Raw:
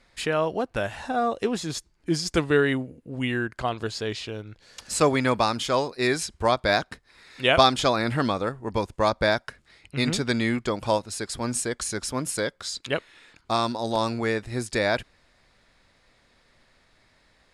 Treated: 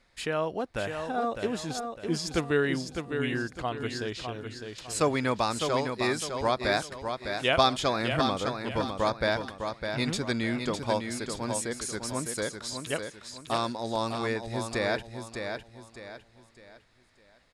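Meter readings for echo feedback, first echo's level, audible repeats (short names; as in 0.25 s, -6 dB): 36%, -6.5 dB, 4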